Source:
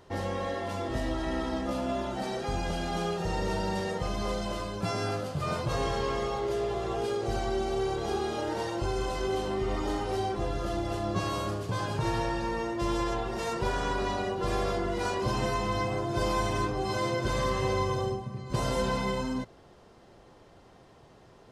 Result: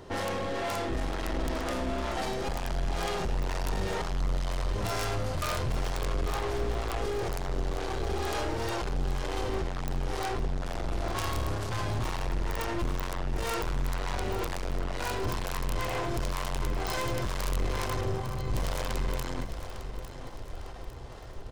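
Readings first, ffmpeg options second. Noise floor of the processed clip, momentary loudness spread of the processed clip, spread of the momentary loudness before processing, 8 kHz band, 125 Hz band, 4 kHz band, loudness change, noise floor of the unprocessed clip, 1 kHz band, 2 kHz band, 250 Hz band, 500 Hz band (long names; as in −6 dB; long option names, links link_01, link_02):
−40 dBFS, 4 LU, 4 LU, +1.5 dB, 0.0 dB, −0.5 dB, −2.0 dB, −55 dBFS, −3.0 dB, 0.0 dB, −4.5 dB, −4.0 dB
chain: -filter_complex "[0:a]asubboost=boost=10.5:cutoff=56,bandreject=frequency=50:width_type=h:width=6,bandreject=frequency=100:width_type=h:width=6,bandreject=frequency=150:width_type=h:width=6,bandreject=frequency=200:width_type=h:width=6,asplit=2[link_01][link_02];[link_02]acompressor=threshold=-31dB:ratio=6,volume=-2.5dB[link_03];[link_01][link_03]amix=inputs=2:normalize=0,aeval=exprs='(tanh(56.2*val(0)+0.4)-tanh(0.4))/56.2':channel_layout=same,acrossover=split=460[link_04][link_05];[link_04]aeval=exprs='val(0)*(1-0.5/2+0.5/2*cos(2*PI*2.1*n/s))':channel_layout=same[link_06];[link_05]aeval=exprs='val(0)*(1-0.5/2-0.5/2*cos(2*PI*2.1*n/s))':channel_layout=same[link_07];[link_06][link_07]amix=inputs=2:normalize=0,aeval=exprs='(mod(26.6*val(0)+1,2)-1)/26.6':channel_layout=same,aecho=1:1:853|1706|2559|3412|4265:0.266|0.125|0.0588|0.0276|0.013,volume=7.5dB"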